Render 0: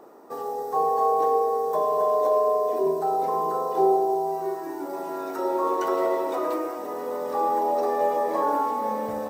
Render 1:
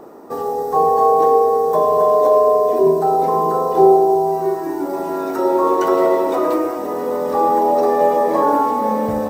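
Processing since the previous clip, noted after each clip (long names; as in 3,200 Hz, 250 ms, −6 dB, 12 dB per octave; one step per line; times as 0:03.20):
low-shelf EQ 230 Hz +12 dB
level +7 dB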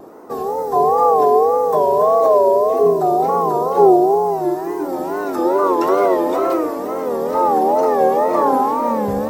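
tape wow and flutter 140 cents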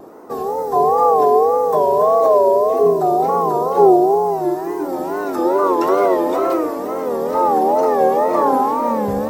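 no processing that can be heard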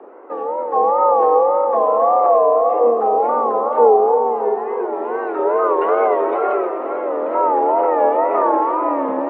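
single-sideband voice off tune +62 Hz 170–2,700 Hz
feedback echo with a swinging delay time 310 ms, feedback 62%, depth 62 cents, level −13 dB
level −1 dB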